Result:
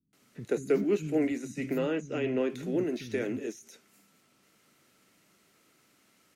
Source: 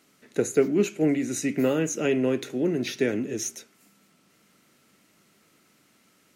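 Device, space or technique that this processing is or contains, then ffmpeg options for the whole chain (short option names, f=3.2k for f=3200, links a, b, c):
de-esser from a sidechain: -filter_complex "[0:a]asplit=2[a][b];[b]highpass=5.4k,apad=whole_len=280474[c];[a][c]sidechaincompress=threshold=-45dB:ratio=10:attack=1:release=51,asettb=1/sr,asplit=3[d][e][f];[d]atrim=end=1.654[g];[e]atrim=start=1.65:end=2.37,asetpts=PTS-STARTPTS,afade=t=in:d=0.004:c=qsin,afade=t=out:st=0.716:d=0.004:c=qsin,lowpass=5.2k[h];[f]atrim=start=2.366[i];[g][h]acrossfade=d=0.004:c1=hsin:c2=qsin[j];[j][i]acrossfade=d=0.004:c1=qsin:c2=hsin,acrossover=split=200[k][l];[l]adelay=130[m];[k][m]amix=inputs=2:normalize=0,volume=-3dB"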